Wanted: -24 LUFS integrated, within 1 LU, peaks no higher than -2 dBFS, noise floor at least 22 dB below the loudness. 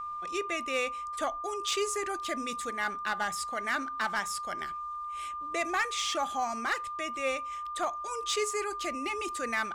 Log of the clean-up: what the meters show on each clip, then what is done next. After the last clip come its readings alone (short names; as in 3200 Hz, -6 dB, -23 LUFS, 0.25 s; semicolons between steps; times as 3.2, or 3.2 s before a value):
clipped 0.3%; flat tops at -22.0 dBFS; steady tone 1200 Hz; tone level -35 dBFS; loudness -32.5 LUFS; peak -22.0 dBFS; loudness target -24.0 LUFS
-> clip repair -22 dBFS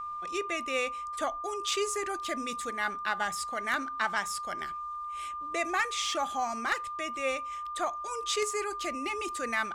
clipped 0.0%; steady tone 1200 Hz; tone level -35 dBFS
-> notch 1200 Hz, Q 30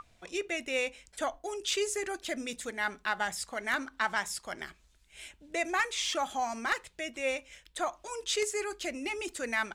steady tone none; loudness -33.5 LUFS; peak -13.0 dBFS; loudness target -24.0 LUFS
-> gain +9.5 dB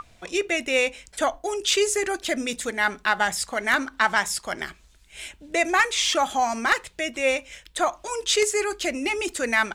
loudness -24.0 LUFS; peak -3.5 dBFS; noise floor -55 dBFS